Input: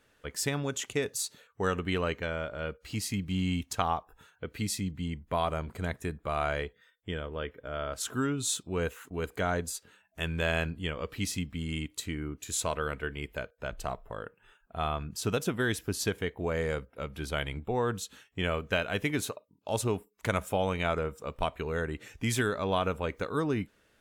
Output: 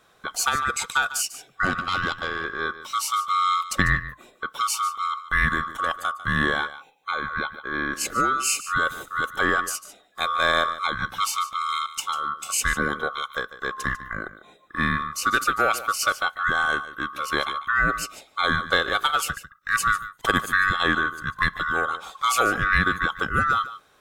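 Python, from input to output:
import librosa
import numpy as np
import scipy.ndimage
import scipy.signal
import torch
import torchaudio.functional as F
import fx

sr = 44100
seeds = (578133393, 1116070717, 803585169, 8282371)

p1 = fx.band_swap(x, sr, width_hz=1000)
p2 = fx.low_shelf(p1, sr, hz=93.0, db=6.0)
p3 = fx.tube_stage(p2, sr, drive_db=21.0, bias=0.65, at=(1.65, 2.45))
p4 = p3 + fx.echo_single(p3, sr, ms=147, db=-14.5, dry=0)
y = p4 * librosa.db_to_amplitude(7.5)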